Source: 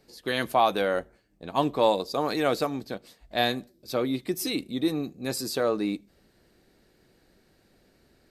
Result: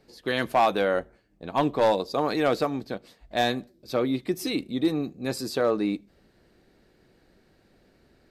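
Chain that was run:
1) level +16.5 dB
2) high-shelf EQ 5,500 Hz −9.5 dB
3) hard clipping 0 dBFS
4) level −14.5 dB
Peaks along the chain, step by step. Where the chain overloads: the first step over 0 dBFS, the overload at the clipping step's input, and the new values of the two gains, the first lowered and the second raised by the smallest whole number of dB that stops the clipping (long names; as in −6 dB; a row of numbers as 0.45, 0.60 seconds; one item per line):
+7.5, +7.0, 0.0, −14.5 dBFS
step 1, 7.0 dB
step 1 +9.5 dB, step 4 −7.5 dB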